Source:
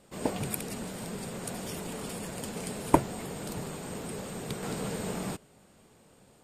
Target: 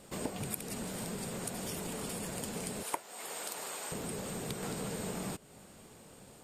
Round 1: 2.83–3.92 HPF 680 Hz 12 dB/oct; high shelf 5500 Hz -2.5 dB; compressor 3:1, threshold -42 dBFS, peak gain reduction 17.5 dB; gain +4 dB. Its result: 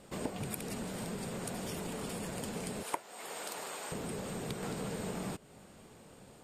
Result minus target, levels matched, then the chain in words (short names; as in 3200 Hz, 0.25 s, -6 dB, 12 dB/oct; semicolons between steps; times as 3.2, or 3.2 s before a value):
8000 Hz band -3.0 dB
2.83–3.92 HPF 680 Hz 12 dB/oct; high shelf 5500 Hz +4.5 dB; compressor 3:1, threshold -42 dBFS, peak gain reduction 17.5 dB; gain +4 dB